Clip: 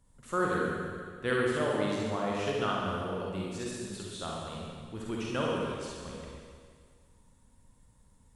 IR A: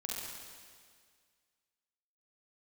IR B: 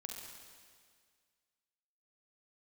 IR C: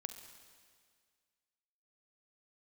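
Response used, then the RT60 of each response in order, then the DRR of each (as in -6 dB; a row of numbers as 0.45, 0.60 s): A; 1.9, 1.9, 1.9 s; -4.0, 0.5, 8.0 dB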